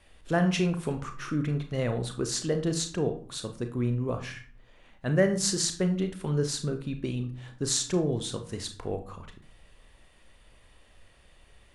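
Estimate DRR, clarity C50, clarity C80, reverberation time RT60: 6.0 dB, 11.0 dB, 16.0 dB, 0.55 s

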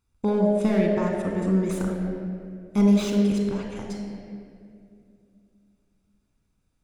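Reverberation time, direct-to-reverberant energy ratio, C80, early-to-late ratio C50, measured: 2.5 s, 1.5 dB, 3.5 dB, 2.5 dB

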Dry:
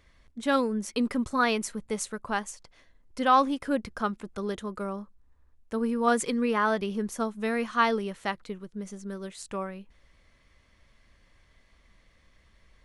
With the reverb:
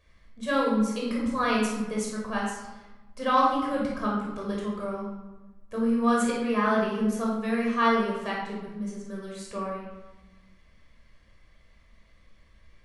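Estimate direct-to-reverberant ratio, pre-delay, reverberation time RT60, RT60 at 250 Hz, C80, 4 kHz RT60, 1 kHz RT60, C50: -3.5 dB, 15 ms, 1.2 s, 1.6 s, 4.0 dB, 0.75 s, 1.2 s, 1.0 dB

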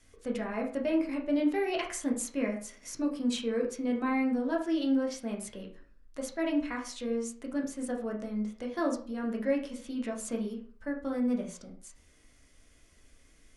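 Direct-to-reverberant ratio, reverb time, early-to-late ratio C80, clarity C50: -0.5 dB, 0.45 s, 13.0 dB, 8.5 dB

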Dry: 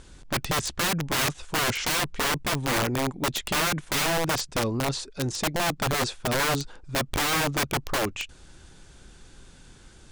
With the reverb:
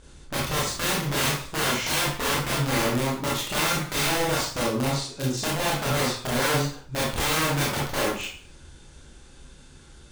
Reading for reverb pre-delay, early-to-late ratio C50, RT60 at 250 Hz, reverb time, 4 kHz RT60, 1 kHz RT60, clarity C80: 22 ms, 1.5 dB, 0.40 s, 0.45 s, 0.45 s, 0.45 s, 7.0 dB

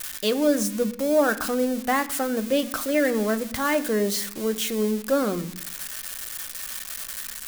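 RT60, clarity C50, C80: 0.70 s, 15.5 dB, 18.0 dB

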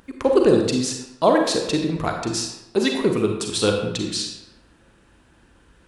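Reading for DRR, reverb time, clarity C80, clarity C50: 2.5 dB, 0.90 s, 6.5 dB, 4.0 dB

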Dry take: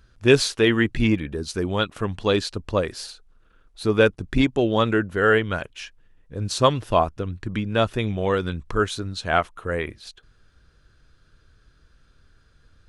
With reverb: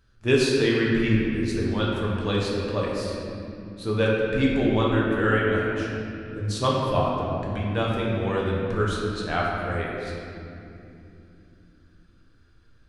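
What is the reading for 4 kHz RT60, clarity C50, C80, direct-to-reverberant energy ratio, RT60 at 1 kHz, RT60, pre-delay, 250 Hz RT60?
1.7 s, -1.0 dB, 0.5 dB, -4.0 dB, 2.5 s, 2.9 s, 5 ms, 5.0 s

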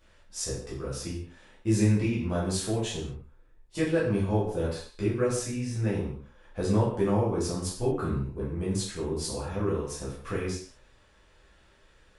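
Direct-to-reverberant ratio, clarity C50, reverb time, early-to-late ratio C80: -8.0 dB, 3.5 dB, no single decay rate, 7.0 dB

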